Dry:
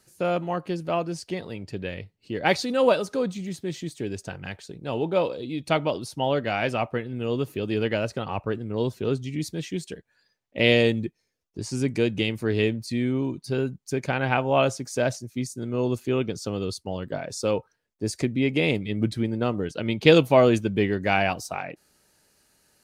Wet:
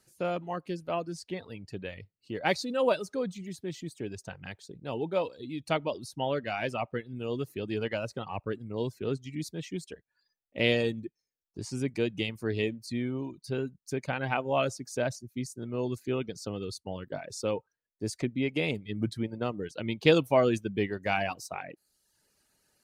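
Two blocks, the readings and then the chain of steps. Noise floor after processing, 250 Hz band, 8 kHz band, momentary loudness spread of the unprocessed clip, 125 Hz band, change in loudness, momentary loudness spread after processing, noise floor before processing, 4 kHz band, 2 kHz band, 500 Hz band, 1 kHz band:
below −85 dBFS, −7.0 dB, −6.0 dB, 13 LU, −7.5 dB, −6.5 dB, 13 LU, −73 dBFS, −6.5 dB, −6.5 dB, −6.5 dB, −6.0 dB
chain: reverb reduction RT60 0.74 s
level −5.5 dB

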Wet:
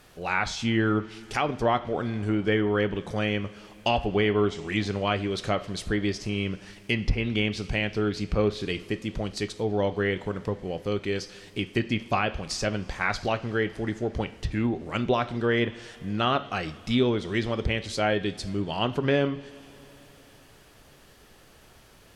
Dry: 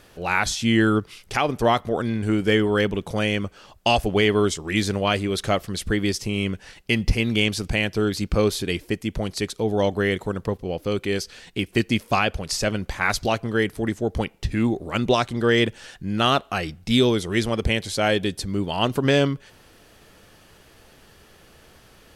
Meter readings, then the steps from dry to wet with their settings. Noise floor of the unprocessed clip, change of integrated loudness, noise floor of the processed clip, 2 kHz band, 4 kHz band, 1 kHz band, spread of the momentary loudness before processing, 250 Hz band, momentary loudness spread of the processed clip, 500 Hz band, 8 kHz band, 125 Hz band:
−53 dBFS, −4.5 dB, −54 dBFS, −4.5 dB, −6.5 dB, −4.0 dB, 8 LU, −4.5 dB, 8 LU, −4.0 dB, −9.5 dB, −4.0 dB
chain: coupled-rooms reverb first 0.43 s, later 4.5 s, from −20 dB, DRR 10 dB
background noise pink −55 dBFS
treble cut that deepens with the level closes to 2,700 Hz, closed at −15.5 dBFS
level −4.5 dB

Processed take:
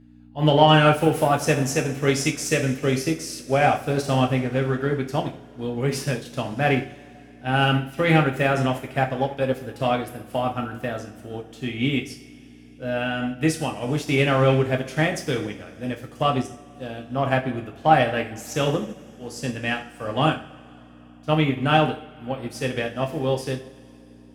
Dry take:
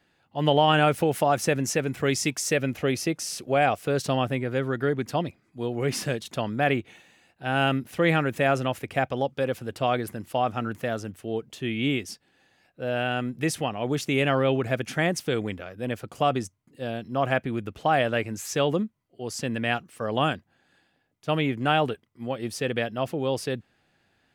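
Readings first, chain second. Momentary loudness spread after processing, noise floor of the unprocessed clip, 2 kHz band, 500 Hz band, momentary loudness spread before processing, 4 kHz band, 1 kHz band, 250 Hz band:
14 LU, −68 dBFS, +2.5 dB, +2.5 dB, 10 LU, +3.0 dB, +3.5 dB, +3.5 dB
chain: harmonic generator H 5 −30 dB, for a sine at −7 dBFS
hum with harmonics 60 Hz, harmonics 5, −44 dBFS 0 dB per octave
coupled-rooms reverb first 0.53 s, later 3.8 s, from −18 dB, DRR 0.5 dB
expander for the loud parts 1.5 to 1, over −34 dBFS
level +2.5 dB

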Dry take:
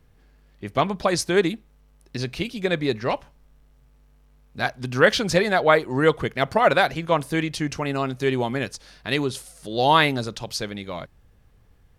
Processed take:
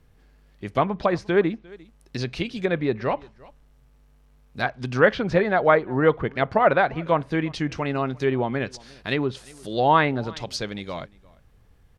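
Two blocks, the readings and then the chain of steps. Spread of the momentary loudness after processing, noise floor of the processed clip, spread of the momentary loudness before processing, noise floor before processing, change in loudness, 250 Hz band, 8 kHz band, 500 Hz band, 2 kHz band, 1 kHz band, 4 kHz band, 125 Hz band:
13 LU, −57 dBFS, 14 LU, −57 dBFS, −1.0 dB, 0.0 dB, below −10 dB, 0.0 dB, −2.0 dB, −0.5 dB, −7.0 dB, 0.0 dB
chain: slap from a distant wall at 60 metres, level −24 dB
treble cut that deepens with the level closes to 1,900 Hz, closed at −19 dBFS

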